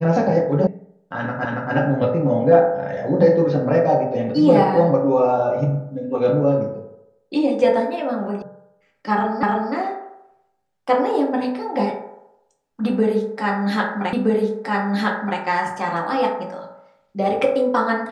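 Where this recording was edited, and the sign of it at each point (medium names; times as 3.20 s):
0.67 s: sound stops dead
1.45 s: repeat of the last 0.28 s
8.42 s: sound stops dead
9.43 s: repeat of the last 0.31 s
14.13 s: repeat of the last 1.27 s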